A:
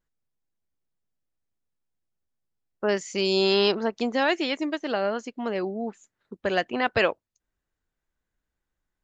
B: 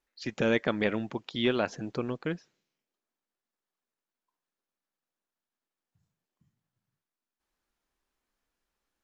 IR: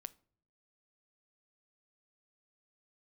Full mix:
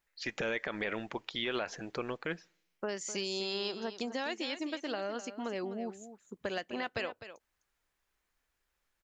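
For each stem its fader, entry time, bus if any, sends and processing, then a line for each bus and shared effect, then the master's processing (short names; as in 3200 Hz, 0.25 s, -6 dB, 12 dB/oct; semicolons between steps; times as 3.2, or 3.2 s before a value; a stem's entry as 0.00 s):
-7.0 dB, 0.00 s, send -14 dB, echo send -11.5 dB, high shelf 4600 Hz +11.5 dB; compressor 6:1, threshold -27 dBFS, peak gain reduction 11 dB
-2.0 dB, 0.00 s, send -6.5 dB, no echo send, ten-band EQ 125 Hz -9 dB, 250 Hz -7 dB, 2000 Hz +5 dB; limiter -22.5 dBFS, peak gain reduction 11.5 dB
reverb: on, pre-delay 7 ms
echo: echo 0.254 s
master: dry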